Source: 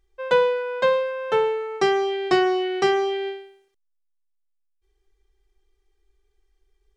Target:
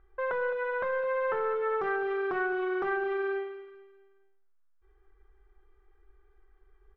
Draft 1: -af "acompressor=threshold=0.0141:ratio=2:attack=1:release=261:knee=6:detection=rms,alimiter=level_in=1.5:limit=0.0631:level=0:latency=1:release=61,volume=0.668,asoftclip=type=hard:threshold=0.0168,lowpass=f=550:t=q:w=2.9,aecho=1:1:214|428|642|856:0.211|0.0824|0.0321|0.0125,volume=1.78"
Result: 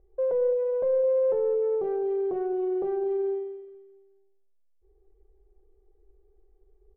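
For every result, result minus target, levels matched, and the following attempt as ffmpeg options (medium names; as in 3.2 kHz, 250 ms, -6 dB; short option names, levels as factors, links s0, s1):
compression: peak gain reduction +14.5 dB; 1 kHz band -12.0 dB
-af "alimiter=level_in=1.5:limit=0.0631:level=0:latency=1:release=61,volume=0.668,asoftclip=type=hard:threshold=0.0168,lowpass=f=550:t=q:w=2.9,aecho=1:1:214|428|642|856:0.211|0.0824|0.0321|0.0125,volume=1.78"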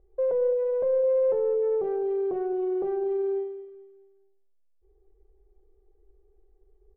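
1 kHz band -12.5 dB
-af "alimiter=level_in=1.5:limit=0.0631:level=0:latency=1:release=61,volume=0.668,asoftclip=type=hard:threshold=0.0168,lowpass=f=1400:t=q:w=2.9,aecho=1:1:214|428|642|856:0.211|0.0824|0.0321|0.0125,volume=1.78"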